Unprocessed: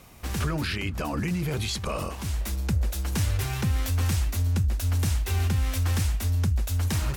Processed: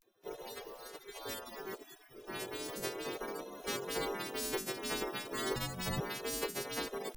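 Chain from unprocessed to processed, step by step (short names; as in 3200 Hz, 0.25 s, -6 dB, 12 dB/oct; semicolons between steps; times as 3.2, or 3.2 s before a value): frequency quantiser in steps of 2 st; spectral gate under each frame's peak -25 dB weak; bell 400 Hz +14 dB 0.49 oct; 5.54–5.99 frequency shift -260 Hz; vibrato 0.35 Hz 69 cents; gain +1 dB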